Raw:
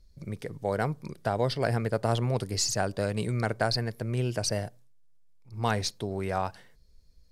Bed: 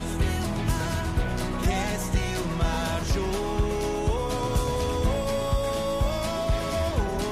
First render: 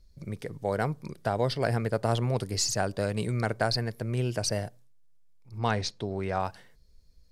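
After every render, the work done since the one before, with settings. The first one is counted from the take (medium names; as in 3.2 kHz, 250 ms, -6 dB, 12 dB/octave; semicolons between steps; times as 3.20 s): 5.58–6.40 s: low-pass 5.8 kHz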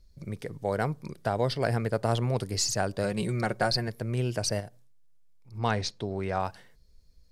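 3.03–3.88 s: comb 5.5 ms, depth 53%; 4.60–5.55 s: compression 1.5:1, threshold -46 dBFS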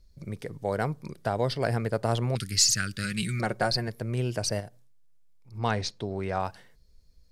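2.35–3.40 s: FFT filter 220 Hz 0 dB, 880 Hz -29 dB, 1.3 kHz +4 dB, 2.3 kHz +7 dB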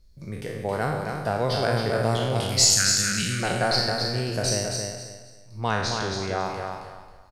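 spectral sustain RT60 0.97 s; on a send: feedback delay 270 ms, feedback 26%, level -5 dB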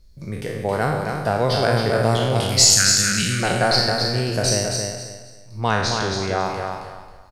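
trim +5 dB; peak limiter -1 dBFS, peak gain reduction 1 dB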